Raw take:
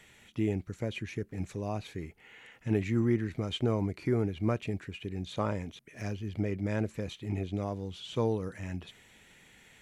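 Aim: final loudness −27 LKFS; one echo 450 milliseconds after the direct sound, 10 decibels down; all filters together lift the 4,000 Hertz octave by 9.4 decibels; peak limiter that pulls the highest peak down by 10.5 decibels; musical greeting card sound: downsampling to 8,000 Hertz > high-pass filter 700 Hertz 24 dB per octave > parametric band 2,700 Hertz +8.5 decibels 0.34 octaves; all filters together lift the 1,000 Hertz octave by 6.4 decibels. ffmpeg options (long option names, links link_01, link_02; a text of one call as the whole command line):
ffmpeg -i in.wav -af "equalizer=frequency=1000:width_type=o:gain=8.5,equalizer=frequency=4000:width_type=o:gain=8,alimiter=limit=-22.5dB:level=0:latency=1,aecho=1:1:450:0.316,aresample=8000,aresample=44100,highpass=frequency=700:width=0.5412,highpass=frequency=700:width=1.3066,equalizer=frequency=2700:width_type=o:width=0.34:gain=8.5,volume=12.5dB" out.wav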